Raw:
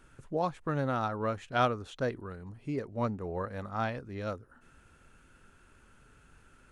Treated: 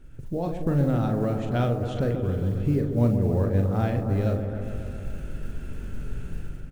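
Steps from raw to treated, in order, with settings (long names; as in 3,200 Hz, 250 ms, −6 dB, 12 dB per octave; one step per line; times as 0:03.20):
automatic gain control gain up to 15 dB
parametric band 1,100 Hz −11.5 dB 0.96 octaves
downward compressor 2 to 1, threshold −38 dBFS, peak gain reduction 13.5 dB
spectral tilt −2.5 dB per octave
noise that follows the level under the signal 35 dB
double-tracking delay 42 ms −7 dB
echo whose low-pass opens from repeat to repeat 137 ms, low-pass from 750 Hz, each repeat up 1 octave, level −6 dB
level +1.5 dB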